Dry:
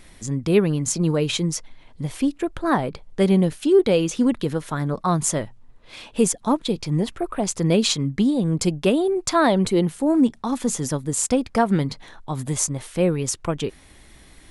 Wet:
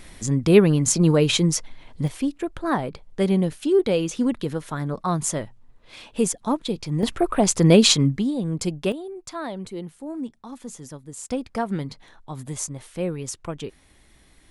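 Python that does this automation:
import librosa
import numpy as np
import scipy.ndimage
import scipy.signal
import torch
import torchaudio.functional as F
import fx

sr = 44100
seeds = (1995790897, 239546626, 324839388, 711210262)

y = fx.gain(x, sr, db=fx.steps((0.0, 3.5), (2.08, -3.0), (7.03, 5.0), (8.18, -4.5), (8.92, -14.0), (11.3, -7.0)))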